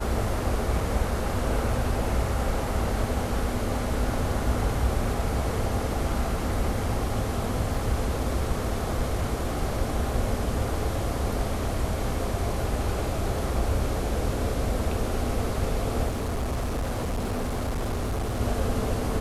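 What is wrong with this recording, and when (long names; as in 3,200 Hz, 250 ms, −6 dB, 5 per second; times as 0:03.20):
0:07.74: drop-out 3.6 ms
0:16.08–0:18.41: clipping −24.5 dBFS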